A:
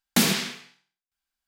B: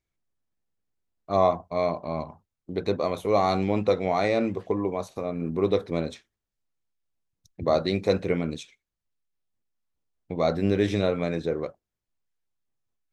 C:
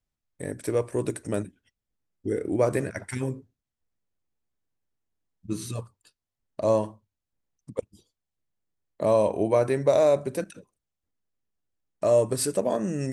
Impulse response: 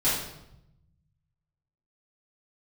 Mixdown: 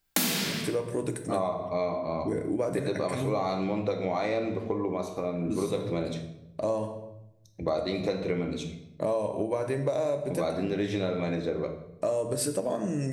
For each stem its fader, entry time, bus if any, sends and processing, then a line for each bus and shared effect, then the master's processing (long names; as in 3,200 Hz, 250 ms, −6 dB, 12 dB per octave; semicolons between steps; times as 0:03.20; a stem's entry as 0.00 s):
+0.5 dB, 0.00 s, send −8.5 dB, high-pass filter 170 Hz 24 dB per octave; high-shelf EQ 12,000 Hz +11 dB
−2.0 dB, 0.00 s, send −15.5 dB, mains-hum notches 50/100/150/200/250/300 Hz
−2.0 dB, 0.00 s, send −18.5 dB, no processing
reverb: on, RT60 0.85 s, pre-delay 3 ms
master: downward compressor 6 to 1, threshold −25 dBFS, peak gain reduction 14.5 dB